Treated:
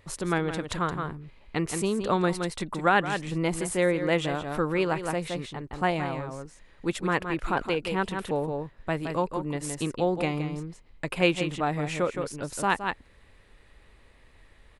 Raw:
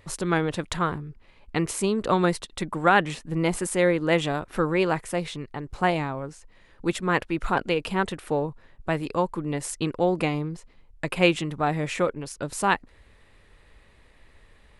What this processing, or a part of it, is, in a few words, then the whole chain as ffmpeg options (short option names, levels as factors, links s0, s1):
ducked delay: -filter_complex "[0:a]asplit=3[s0][s1][s2];[s1]adelay=168,volume=0.75[s3];[s2]apad=whole_len=659806[s4];[s3][s4]sidechaincompress=threshold=0.0282:ratio=8:attack=12:release=156[s5];[s0][s5]amix=inputs=2:normalize=0,volume=0.708"